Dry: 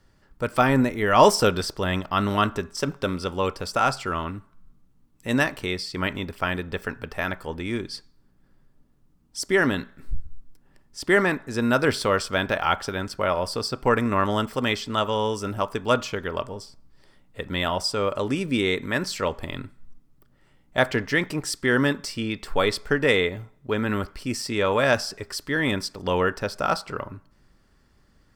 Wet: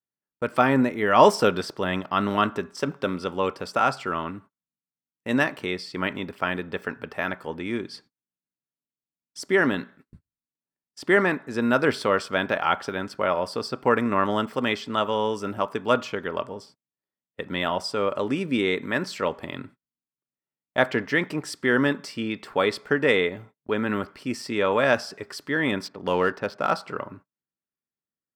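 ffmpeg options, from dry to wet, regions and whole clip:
ffmpeg -i in.wav -filter_complex "[0:a]asettb=1/sr,asplit=3[link_01][link_02][link_03];[link_01]atrim=end=25.854[link_04];[link_02]atrim=start=25.85:end=26.71,asetpts=PTS-STARTPTS,afade=type=in:duration=0.004:curve=qsin,afade=type=out:start_time=0.856:duration=0.004:curve=qsin,highshelf=frequency=12000:gain=4,adynamicsmooth=sensitivity=7.5:basefreq=2700[link_05];[link_03]atrim=start=26.706[link_06];[link_04][link_05]acrossfade=duration=0.004:curve1=hsin:curve2=qsin[link_07];[link_07][link_06]acrossfade=duration=0.004:curve1=qsin:curve2=hsin,highpass=180,agate=range=-35dB:threshold=-47dB:ratio=16:detection=peak,bass=frequency=250:gain=2,treble=frequency=4000:gain=-8" out.wav

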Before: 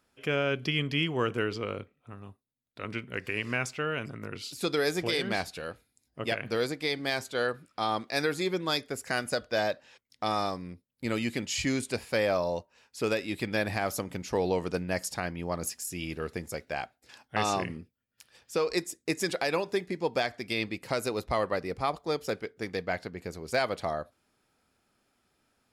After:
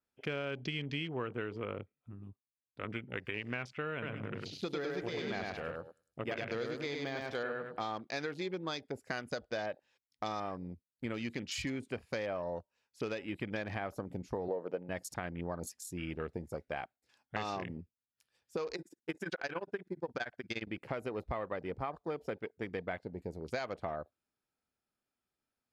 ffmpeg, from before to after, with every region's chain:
ffmpeg -i in.wav -filter_complex "[0:a]asettb=1/sr,asplit=3[link_01][link_02][link_03];[link_01]atrim=end=3.924[link_04];[link_02]atrim=start=3.92:end=7.87,asetpts=PTS-STARTPTS,afade=type=in:duration=0.004:curve=qsin,afade=type=out:start_time=3.946:duration=0.004:curve=qsin,deesser=0.85,aecho=1:1:102|204|306|408:0.708|0.227|0.0725|0.0232,atrim=end_sample=174195[link_05];[link_03]atrim=start=7.866[link_06];[link_04][link_05]acrossfade=duration=0.004:curve1=hsin:curve2=qsin[link_07];[link_07][link_06]acrossfade=duration=0.004:curve1=qsin:curve2=hsin,asettb=1/sr,asplit=3[link_08][link_09][link_10];[link_08]atrim=end=14.484[link_11];[link_09]atrim=start=14.48:end=14.89,asetpts=PTS-STARTPTS,afade=type=in:duration=0.004:curve=qsin,afade=type=out:start_time=0.406:duration=0.004:curve=qsin,highpass=190,equalizer=frequency=540:width=2:gain=11.5,adynamicsmooth=sensitivity=7.5:basefreq=6100[link_12];[link_10]atrim=start=14.886[link_13];[link_11][link_12]acrossfade=duration=0.004:curve1=hsin:curve2=qsin[link_14];[link_14][link_13]acrossfade=duration=0.004:curve1=qsin:curve2=hsin,asettb=1/sr,asplit=3[link_15][link_16][link_17];[link_15]atrim=end=18.754[link_18];[link_16]atrim=start=18.75:end=20.67,asetpts=PTS-STARTPTS,afade=type=in:duration=0.004:curve=qsin,afade=type=out:start_time=1.916:duration=0.004:curve=qsin,equalizer=frequency=1500:width_type=o:width=0.22:gain=14,tremolo=f=17:d=0.92[link_19];[link_17]atrim=start=20.666[link_20];[link_18][link_19]acrossfade=duration=0.004:curve1=hsin:curve2=qsin[link_21];[link_21][link_20]acrossfade=duration=0.004:curve1=qsin:curve2=hsin,afwtdn=0.00891,acompressor=threshold=-32dB:ratio=6,adynamicequalizer=threshold=0.00141:dfrequency=4700:dqfactor=0.7:tfrequency=4700:tqfactor=0.7:attack=5:release=100:ratio=0.375:range=3:mode=cutabove:tftype=highshelf,volume=-2dB" out.wav

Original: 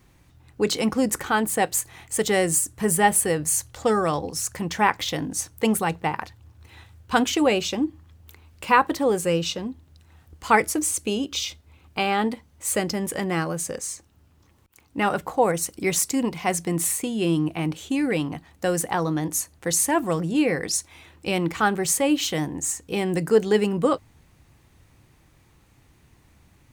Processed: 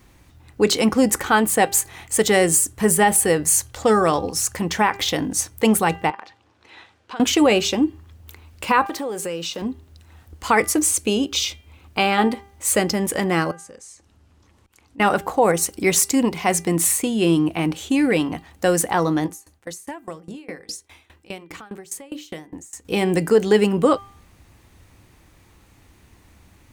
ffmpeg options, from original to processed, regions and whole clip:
ffmpeg -i in.wav -filter_complex "[0:a]asettb=1/sr,asplit=3[link_01][link_02][link_03];[link_01]atrim=end=6.104[link_04];[link_02]atrim=start=6.1:end=7.2,asetpts=PTS-STARTPTS,afade=type=in:duration=0.004:curve=qsin,afade=type=out:start_time=1.096:duration=0.004:curve=qsin,highpass=310,lowpass=5000,acompressor=threshold=-39dB:ratio=4:attack=3.2:release=140:knee=1:detection=peak,volume=22.5dB,asoftclip=hard,volume=-22.5dB[link_05];[link_03]atrim=start=7.196[link_06];[link_04][link_05]acrossfade=duration=0.004:curve1=hsin:curve2=qsin[link_07];[link_07][link_06]acrossfade=duration=0.004:curve1=qsin:curve2=hsin,asettb=1/sr,asplit=3[link_08][link_09][link_10];[link_08]atrim=end=8.864[link_11];[link_09]atrim=start=8.86:end=9.62,asetpts=PTS-STARTPTS,afade=type=in:duration=0.004:curve=qsin,afade=type=out:start_time=0.756:duration=0.004:curve=qsin,highpass=frequency=250:poles=1,aeval=exprs='val(0)*gte(abs(val(0)),0.00531)':channel_layout=same,acompressor=threshold=-30dB:ratio=5:attack=3.2:release=140:knee=1:detection=peak[link_12];[link_10]atrim=start=9.616[link_13];[link_11][link_12]acrossfade=duration=0.004:curve1=hsin:curve2=qsin[link_14];[link_14][link_13]acrossfade=duration=0.004:curve1=qsin:curve2=hsin,asettb=1/sr,asplit=3[link_15][link_16][link_17];[link_15]atrim=end=13.514[link_18];[link_16]atrim=start=13.51:end=15,asetpts=PTS-STARTPTS,afade=type=in:duration=0.004:curve=qsin,afade=type=out:start_time=1.486:duration=0.004:curve=qsin,lowpass=9700,acompressor=threshold=-58dB:ratio=2:attack=3.2:release=140:knee=1:detection=peak[link_19];[link_17]atrim=start=14.996[link_20];[link_18][link_19]acrossfade=duration=0.004:curve1=hsin:curve2=qsin[link_21];[link_21][link_20]acrossfade=duration=0.004:curve1=qsin:curve2=hsin,asettb=1/sr,asplit=3[link_22][link_23][link_24];[link_22]atrim=end=19.264[link_25];[link_23]atrim=start=19.26:end=22.85,asetpts=PTS-STARTPTS,afade=type=in:duration=0.004:curve=qsin,afade=type=out:start_time=3.586:duration=0.004:curve=qsin,bandreject=frequency=60:width_type=h:width=6,bandreject=frequency=120:width_type=h:width=6,bandreject=frequency=180:width_type=h:width=6,bandreject=frequency=240:width_type=h:width=6,bandreject=frequency=300:width_type=h:width=6,bandreject=frequency=360:width_type=h:width=6,bandreject=frequency=420:width_type=h:width=6,bandreject=frequency=480:width_type=h:width=6,bandreject=frequency=540:width_type=h:width=6,acompressor=threshold=-33dB:ratio=3:attack=3.2:release=140:knee=1:detection=peak,aeval=exprs='val(0)*pow(10,-23*if(lt(mod(4.9*n/s,1),2*abs(4.9)/1000),1-mod(4.9*n/s,1)/(2*abs(4.9)/1000),(mod(4.9*n/s,1)-2*abs(4.9)/1000)/(1-2*abs(4.9)/1000))/20)':channel_layout=same[link_26];[link_24]atrim=start=22.846[link_27];[link_25][link_26]acrossfade=duration=0.004:curve1=hsin:curve2=qsin[link_28];[link_28][link_27]acrossfade=duration=0.004:curve1=qsin:curve2=hsin,equalizer=frequency=140:width=5.4:gain=-10.5,bandreject=frequency=397.3:width_type=h:width=4,bandreject=frequency=794.6:width_type=h:width=4,bandreject=frequency=1191.9:width_type=h:width=4,bandreject=frequency=1589.2:width_type=h:width=4,bandreject=frequency=1986.5:width_type=h:width=4,bandreject=frequency=2383.8:width_type=h:width=4,bandreject=frequency=2781.1:width_type=h:width=4,bandreject=frequency=3178.4:width_type=h:width=4,alimiter=level_in=10.5dB:limit=-1dB:release=50:level=0:latency=1,volume=-5dB" out.wav

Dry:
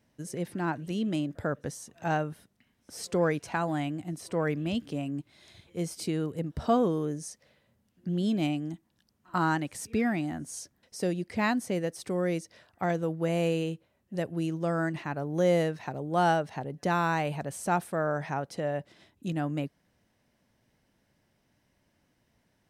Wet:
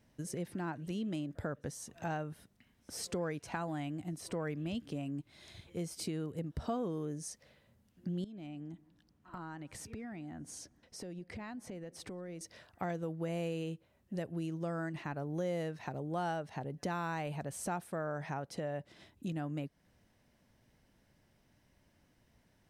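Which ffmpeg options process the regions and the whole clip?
ffmpeg -i in.wav -filter_complex "[0:a]asettb=1/sr,asplit=3[link_01][link_02][link_03];[link_01]atrim=end=8.244[link_04];[link_02]atrim=start=8.24:end=12.41,asetpts=PTS-STARTPTS,afade=type=in:duration=0.004:curve=qsin,afade=type=out:start_time=4.166:duration=0.004:curve=qsin,highshelf=frequency=5100:gain=-10,acompressor=threshold=-43dB:ratio=6:attack=3.2:release=140:knee=1:detection=peak,asplit=2[link_05][link_06];[link_06]adelay=184,lowpass=frequency=820:poles=1,volume=-22dB,asplit=2[link_07][link_08];[link_08]adelay=184,lowpass=frequency=820:poles=1,volume=0.46,asplit=2[link_09][link_10];[link_10]adelay=184,lowpass=frequency=820:poles=1,volume=0.46[link_11];[link_05][link_07][link_09][link_11]amix=inputs=4:normalize=0,atrim=end_sample=183897[link_12];[link_03]atrim=start=12.406[link_13];[link_04][link_12]acrossfade=duration=0.004:curve1=hsin:curve2=qsin[link_14];[link_14][link_13]acrossfade=duration=0.004:curve1=qsin:curve2=hsin,lowshelf=frequency=73:gain=8,acompressor=threshold=-39dB:ratio=2.5" out.wav

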